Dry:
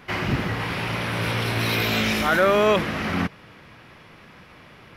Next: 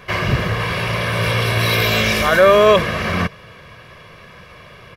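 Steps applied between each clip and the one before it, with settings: comb 1.8 ms, depth 64%; trim +5 dB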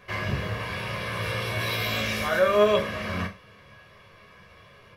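chord resonator C#2 sus4, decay 0.29 s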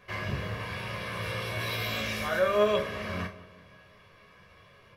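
filtered feedback delay 185 ms, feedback 54%, low-pass 1.7 kHz, level -16 dB; trim -4.5 dB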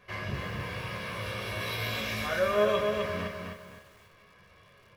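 bit-crushed delay 257 ms, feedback 35%, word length 9-bit, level -4.5 dB; trim -2 dB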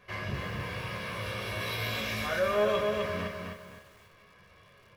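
saturation -17.5 dBFS, distortion -21 dB

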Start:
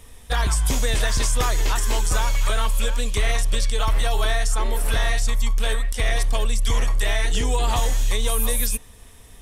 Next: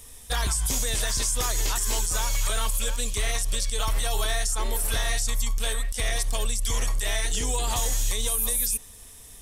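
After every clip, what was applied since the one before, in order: tone controls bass -1 dB, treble +11 dB; peak limiter -12 dBFS, peak gain reduction 10.5 dB; trim -4 dB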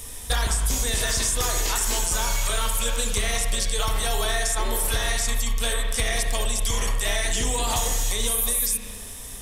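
spring tank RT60 1.1 s, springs 34/39 ms, chirp 45 ms, DRR 3 dB; compression 5:1, threshold -29 dBFS, peak gain reduction 9 dB; trim +8.5 dB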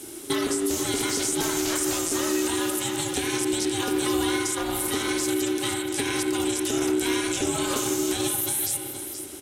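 on a send: delay 476 ms -10 dB; on the sum: ring modulator 340 Hz

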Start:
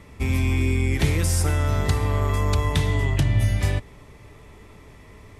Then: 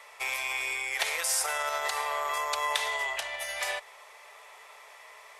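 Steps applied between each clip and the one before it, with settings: peak limiter -15.5 dBFS, peak gain reduction 6.5 dB; inverse Chebyshev high-pass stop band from 310 Hz, stop band 40 dB; trim +3.5 dB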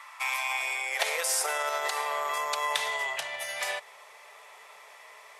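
high-pass sweep 1.1 kHz -> 130 Hz, 0.12–2.74 s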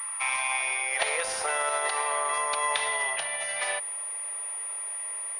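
in parallel at -11.5 dB: hard clipper -24 dBFS, distortion -16 dB; on the sum: class-D stage that switches slowly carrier 9.5 kHz

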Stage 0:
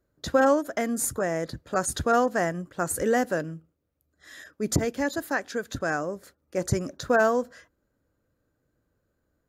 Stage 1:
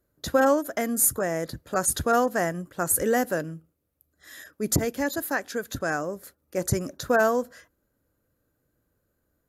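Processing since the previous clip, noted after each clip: peaking EQ 12 kHz +13 dB 0.65 oct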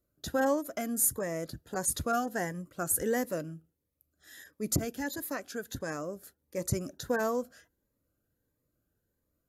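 Shepard-style phaser rising 1.5 Hz; trim -5.5 dB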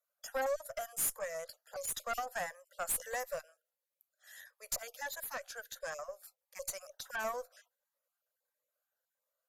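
random holes in the spectrogram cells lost 20%; steep high-pass 520 Hz 72 dB/octave; valve stage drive 28 dB, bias 0.5

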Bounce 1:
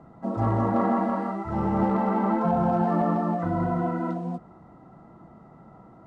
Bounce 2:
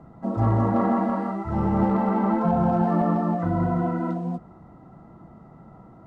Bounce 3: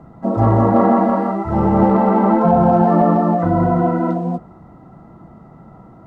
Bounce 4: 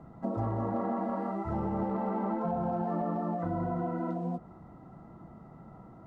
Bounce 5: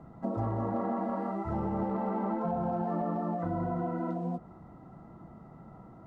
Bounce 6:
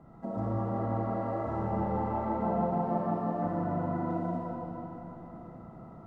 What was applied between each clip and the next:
bass shelf 170 Hz +6.5 dB
dynamic bell 540 Hz, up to +6 dB, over -37 dBFS, Q 0.74; trim +5.5 dB
compression 4:1, threshold -22 dBFS, peak gain reduction 11.5 dB; trim -8.5 dB
no audible change
algorithmic reverb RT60 4.1 s, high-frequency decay 0.8×, pre-delay 10 ms, DRR -5 dB; trim -4.5 dB

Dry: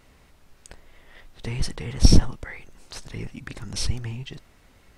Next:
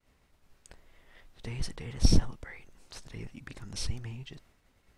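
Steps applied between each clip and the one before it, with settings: expander -50 dBFS; trim -8 dB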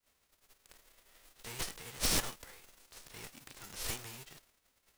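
formants flattened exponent 0.3; hard clipper -18 dBFS, distortion -8 dB; trim -8.5 dB

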